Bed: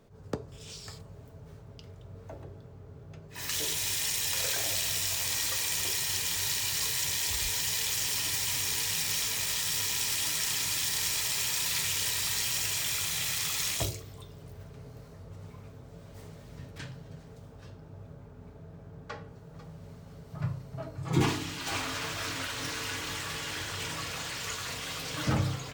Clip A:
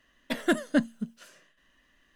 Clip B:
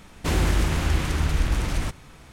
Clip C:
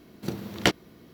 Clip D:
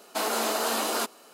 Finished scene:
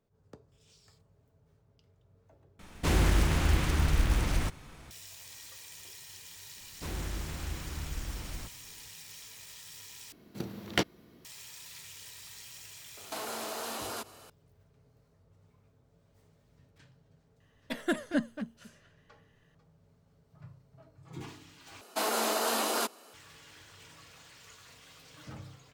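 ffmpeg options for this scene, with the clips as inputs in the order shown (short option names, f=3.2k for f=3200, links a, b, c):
-filter_complex "[2:a]asplit=2[a][b];[4:a]asplit=2[c][d];[0:a]volume=-18dB[e];[a]acrusher=bits=6:mode=log:mix=0:aa=0.000001[f];[c]acompressor=threshold=-34dB:ratio=6:attack=3.2:release=140:knee=1:detection=peak[g];[1:a]asplit=2[h][i];[i]adelay=230,highpass=300,lowpass=3.4k,asoftclip=type=hard:threshold=-22dB,volume=-8dB[j];[h][j]amix=inputs=2:normalize=0[k];[e]asplit=4[l][m][n][o];[l]atrim=end=2.594[p];[f]atrim=end=2.32,asetpts=PTS-STARTPTS,volume=-3.5dB[q];[m]atrim=start=4.906:end=10.124[r];[3:a]atrim=end=1.13,asetpts=PTS-STARTPTS,volume=-6dB[s];[n]atrim=start=11.246:end=21.814[t];[d]atrim=end=1.33,asetpts=PTS-STARTPTS,volume=-2.5dB[u];[o]atrim=start=23.136[v];[b]atrim=end=2.32,asetpts=PTS-STARTPTS,volume=-15.5dB,afade=t=in:d=0.004:c=hsin,afade=t=out:st=2.316:d=0.004:c=hsin,adelay=6570[w];[g]atrim=end=1.33,asetpts=PTS-STARTPTS,volume=-1dB,afade=t=in:d=0.004:c=hsin,afade=t=out:st=1.326:d=0.004:c=hsin,adelay=12970[x];[k]atrim=end=2.15,asetpts=PTS-STARTPTS,volume=-5.5dB,afade=t=in:d=0.004:c=hsin,afade=t=out:st=2.146:d=0.004:c=hsin,adelay=17400[y];[p][q]acrossfade=d=0.004:c1=hsin:c2=hsin[z];[z][r]acrossfade=d=0.004:c1=hsin:c2=hsin[aa];[aa][s]acrossfade=d=0.004:c1=hsin:c2=hsin[ab];[ab][t]acrossfade=d=0.004:c1=hsin:c2=hsin[ac];[ac][u]acrossfade=d=0.004:c1=hsin:c2=hsin[ad];[ad][v]acrossfade=d=0.004:c1=hsin:c2=hsin[ae];[ae][w][x][y]amix=inputs=4:normalize=0"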